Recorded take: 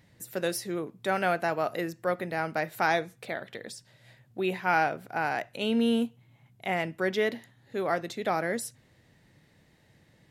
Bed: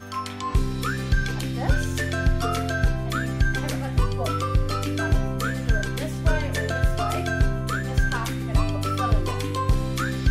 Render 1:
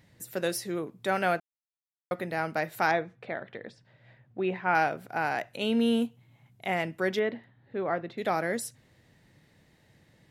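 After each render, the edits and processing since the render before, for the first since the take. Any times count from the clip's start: 1.4–2.11 mute; 2.91–4.75 LPF 2300 Hz; 7.19–8.18 air absorption 390 m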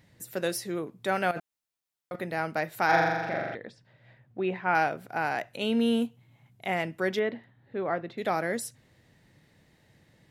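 1.31–2.16 negative-ratio compressor -35 dBFS; 2.85–3.55 flutter echo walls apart 7.2 m, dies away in 1.4 s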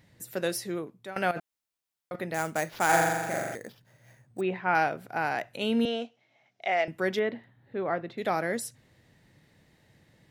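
0.71–1.16 fade out, to -17.5 dB; 2.34–4.41 sample-rate reducer 8400 Hz; 5.85–6.88 speaker cabinet 450–6100 Hz, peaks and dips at 660 Hz +9 dB, 1000 Hz -7 dB, 2200 Hz +3 dB, 5600 Hz +7 dB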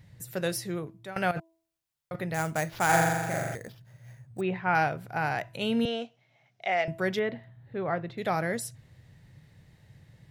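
resonant low shelf 180 Hz +8.5 dB, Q 1.5; de-hum 328 Hz, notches 3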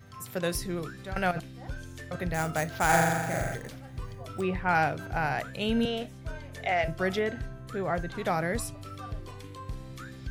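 add bed -17 dB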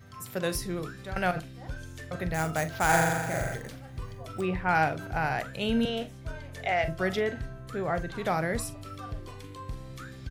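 doubler 44 ms -14 dB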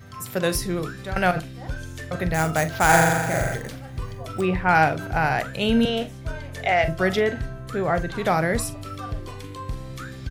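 gain +7 dB

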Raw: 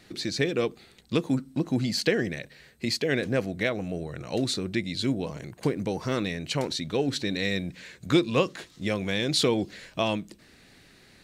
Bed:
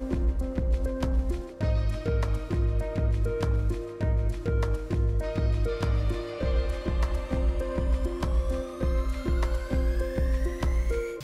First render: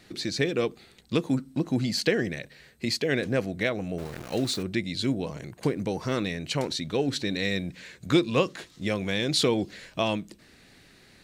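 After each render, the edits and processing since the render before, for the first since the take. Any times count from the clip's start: 3.98–4.63 sample gate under -37.5 dBFS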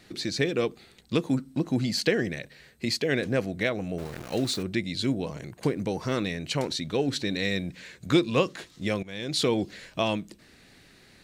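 9.03–9.54 fade in, from -17.5 dB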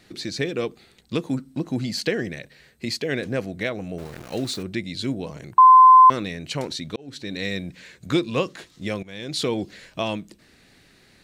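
5.58–6.1 bleep 1030 Hz -6.5 dBFS; 6.96–7.42 fade in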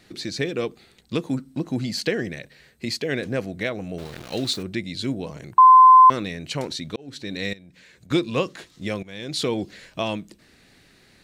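3.94–4.53 bell 3700 Hz +7 dB 1 oct; 7.53–8.11 compressor 3:1, threshold -49 dBFS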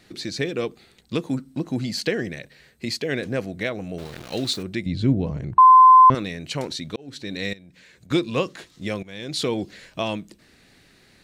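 4.86–6.15 RIAA curve playback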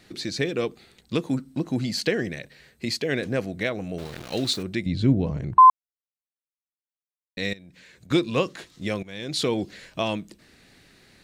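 5.7–7.37 mute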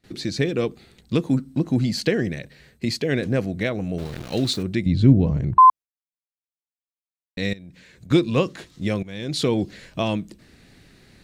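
gate with hold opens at -45 dBFS; low shelf 300 Hz +8.5 dB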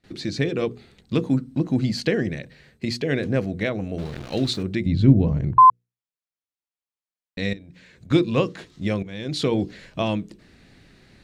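high shelf 8800 Hz -12 dB; notches 60/120/180/240/300/360/420/480 Hz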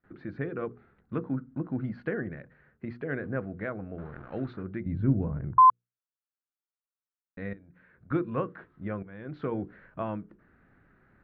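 ladder low-pass 1600 Hz, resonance 60%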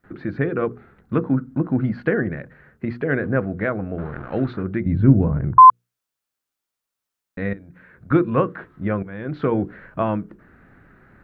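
gain +11.5 dB; limiter -2 dBFS, peak gain reduction 2 dB

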